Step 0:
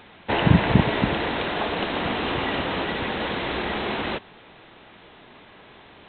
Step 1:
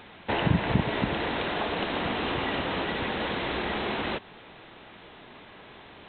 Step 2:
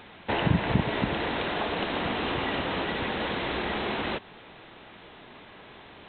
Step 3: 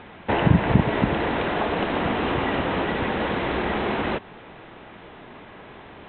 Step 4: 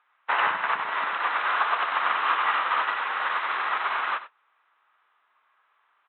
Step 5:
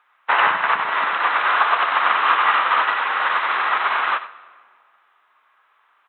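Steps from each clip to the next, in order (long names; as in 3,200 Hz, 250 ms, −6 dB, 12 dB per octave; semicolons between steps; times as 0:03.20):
downward compressor 1.5 to 1, threshold −32 dBFS, peak gain reduction 8 dB
no processing that can be heard
high-frequency loss of the air 370 metres; level +7 dB
high-pass with resonance 1,200 Hz, resonance Q 3.7; on a send: multi-tap delay 95/122 ms −5.5/−12.5 dB; on the sum: expander for the loud parts 2.5 to 1, over −38 dBFS
convolution reverb RT60 1.9 s, pre-delay 68 ms, DRR 18.5 dB; level +7 dB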